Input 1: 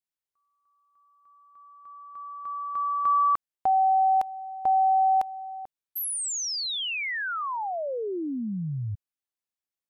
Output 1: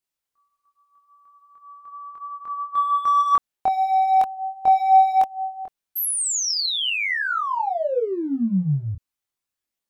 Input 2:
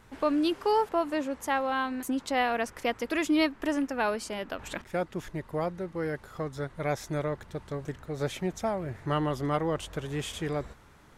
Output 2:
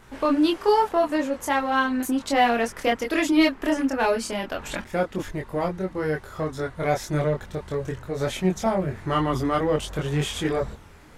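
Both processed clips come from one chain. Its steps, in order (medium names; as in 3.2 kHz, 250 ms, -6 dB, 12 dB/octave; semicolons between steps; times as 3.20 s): in parallel at -10.5 dB: hard clipper -28.5 dBFS; on the sum: chorus voices 4, 0.36 Hz, delay 24 ms, depth 2.8 ms; trim +7.5 dB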